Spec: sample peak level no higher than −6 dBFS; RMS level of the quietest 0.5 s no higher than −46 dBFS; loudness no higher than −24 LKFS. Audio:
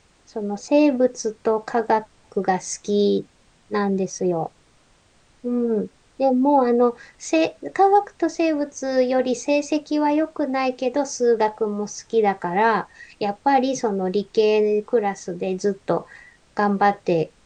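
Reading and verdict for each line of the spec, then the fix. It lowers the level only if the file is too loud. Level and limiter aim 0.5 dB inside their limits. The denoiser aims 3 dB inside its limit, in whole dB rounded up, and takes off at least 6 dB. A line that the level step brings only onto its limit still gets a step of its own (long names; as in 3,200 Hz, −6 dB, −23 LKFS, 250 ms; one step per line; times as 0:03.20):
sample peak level −5.5 dBFS: out of spec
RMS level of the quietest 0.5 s −57 dBFS: in spec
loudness −21.5 LKFS: out of spec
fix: level −3 dB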